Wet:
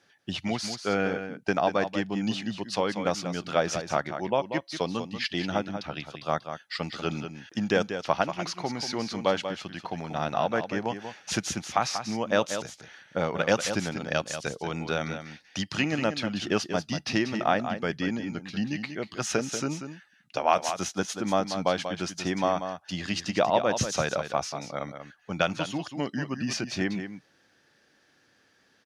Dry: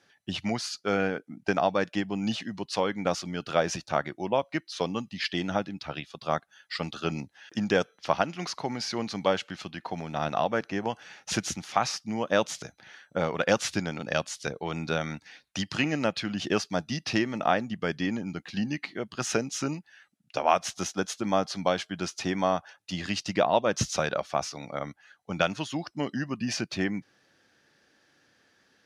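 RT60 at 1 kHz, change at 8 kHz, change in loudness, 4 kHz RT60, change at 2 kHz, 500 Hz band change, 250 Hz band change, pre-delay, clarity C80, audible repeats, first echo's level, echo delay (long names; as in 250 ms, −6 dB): no reverb audible, +0.5 dB, +0.5 dB, no reverb audible, +0.5 dB, +0.5 dB, +0.5 dB, no reverb audible, no reverb audible, 1, −9.0 dB, 188 ms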